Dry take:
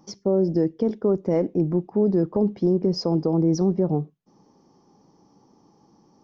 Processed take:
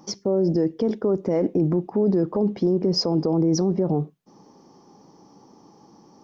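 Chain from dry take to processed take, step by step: low shelf 140 Hz -7.5 dB; limiter -20.5 dBFS, peak gain reduction 8 dB; gain +7.5 dB

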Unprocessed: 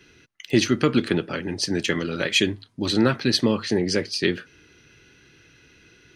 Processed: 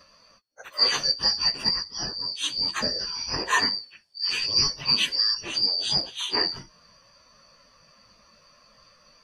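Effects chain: four-band scrambler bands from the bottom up 2341; plain phase-vocoder stretch 1.5×

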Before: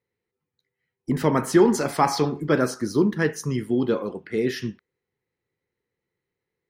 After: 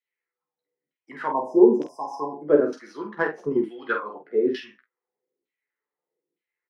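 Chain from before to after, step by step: tracing distortion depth 0.037 ms; 1.26–2.42 brick-wall FIR band-stop 1100–4900 Hz; flange 0.3 Hz, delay 5.5 ms, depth 2.7 ms, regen +57%; LFO band-pass saw down 1.1 Hz 290–3300 Hz; dynamic EQ 1500 Hz, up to +5 dB, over -51 dBFS, Q 2.5; HPF 180 Hz 24 dB/oct; high shelf 4100 Hz -7.5 dB; 3.14–3.98 transient shaper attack +8 dB, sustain +2 dB; early reflections 14 ms -5.5 dB, 47 ms -6.5 dB, 66 ms -17.5 dB; gain +7.5 dB

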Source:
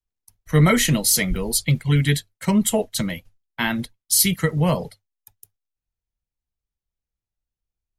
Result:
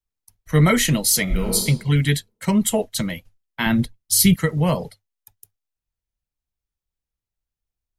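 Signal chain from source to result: 1.23–1.64 reverb throw, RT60 0.96 s, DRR 1 dB; 3.66–4.36 low shelf 280 Hz +11.5 dB

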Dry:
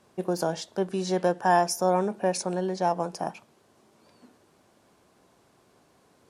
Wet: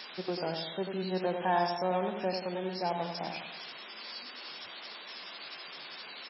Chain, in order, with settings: switching spikes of -18 dBFS; on a send: feedback echo 92 ms, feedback 51%, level -6 dB; on the sum: gain -7.5 dB; MP3 16 kbps 16000 Hz

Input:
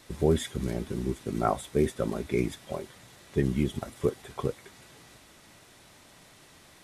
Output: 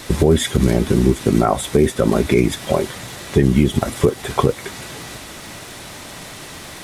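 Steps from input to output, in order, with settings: compressor 2.5:1, threshold -31 dBFS, peak gain reduction 9.5 dB; crackle 190/s -55 dBFS; maximiser +21 dB; gain -1 dB

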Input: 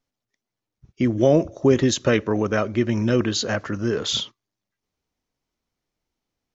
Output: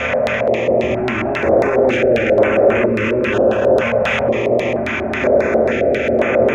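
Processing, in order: per-bin compression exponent 0.2; notches 50/100/150/200/250/300/350/400 Hz; hard clip -15 dBFS, distortion -7 dB; EQ curve 290 Hz 0 dB, 530 Hz +3 dB, 1300 Hz +1 dB, 2600 Hz +13 dB, 4100 Hz -30 dB, 6500 Hz -7 dB, 9300 Hz -11 dB; reverb RT60 0.90 s, pre-delay 6 ms, DRR -6.5 dB; limiter -7 dBFS, peak gain reduction 11.5 dB; LFO low-pass square 3.7 Hz 640–3900 Hz; high shelf 6900 Hz +8.5 dB; notch 4500 Hz, Q 16; stepped notch 2.1 Hz 350–4400 Hz; gain -1 dB

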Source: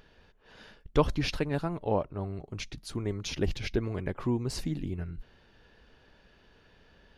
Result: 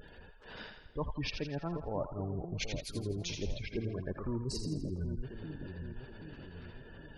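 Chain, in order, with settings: crackle 34/s -45 dBFS; reverse; compressor 10:1, threshold -40 dBFS, peak gain reduction 22 dB; reverse; spectral gate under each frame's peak -20 dB strong; split-band echo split 660 Hz, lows 0.776 s, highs 83 ms, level -7 dB; gain +6.5 dB

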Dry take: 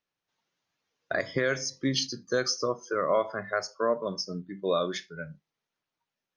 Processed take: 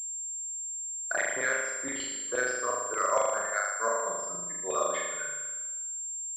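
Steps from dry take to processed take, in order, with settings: LFO band-pass saw down 8.5 Hz 700–2900 Hz; flutter echo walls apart 6.8 m, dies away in 1.2 s; pulse-width modulation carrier 7400 Hz; gain +3.5 dB

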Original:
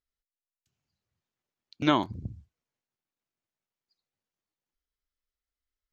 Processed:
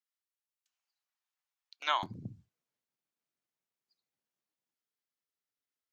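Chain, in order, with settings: HPF 780 Hz 24 dB/oct, from 2.03 s 120 Hz; gain -2.5 dB

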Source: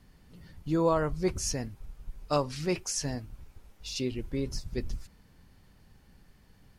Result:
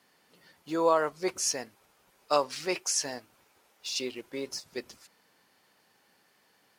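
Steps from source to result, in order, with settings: HPF 490 Hz 12 dB/oct; in parallel at -11 dB: sample gate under -43 dBFS; on the sum: gain +2 dB

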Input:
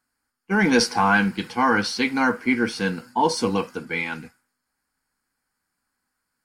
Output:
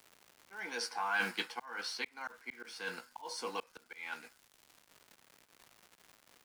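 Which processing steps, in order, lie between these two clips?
G.711 law mismatch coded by A; HPF 630 Hz 12 dB/oct; reverse; compressor 10:1, threshold -30 dBFS, peak gain reduction 14.5 dB; reverse; doubler 17 ms -11 dB; auto swell 0.703 s; crackle 260/s -56 dBFS; three-band squash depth 40%; gain +2.5 dB

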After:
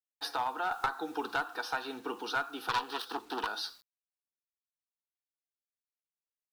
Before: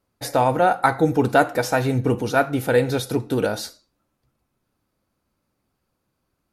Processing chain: 2.69–3.47 self-modulated delay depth 0.76 ms; HPF 260 Hz 24 dB/oct; three-band isolator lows -19 dB, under 410 Hz, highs -15 dB, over 7400 Hz; compressor 2.5:1, threshold -27 dBFS, peak gain reduction 10.5 dB; fixed phaser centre 2100 Hz, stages 6; one-sided clip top -26 dBFS; bit-crush 10-bit; 0.72–1.34 three-band squash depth 40%

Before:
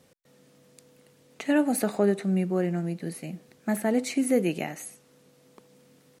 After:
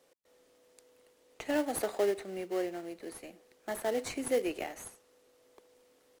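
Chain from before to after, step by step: HPF 350 Hz 24 dB/oct; in parallel at -6.5 dB: sample-rate reducer 2500 Hz, jitter 20%; on the sum: gain -6.5 dB

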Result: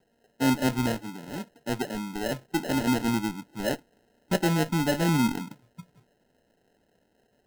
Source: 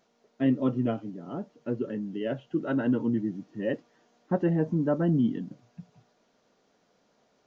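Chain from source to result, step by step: in parallel at -10.5 dB: Schmitt trigger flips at -25 dBFS; on the sum: sample-and-hold 38×

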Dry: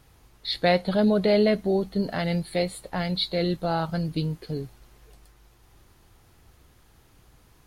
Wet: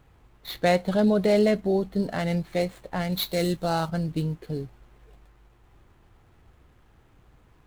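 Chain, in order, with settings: median filter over 9 samples; 3.12–3.89 high shelf 3300 Hz +9 dB

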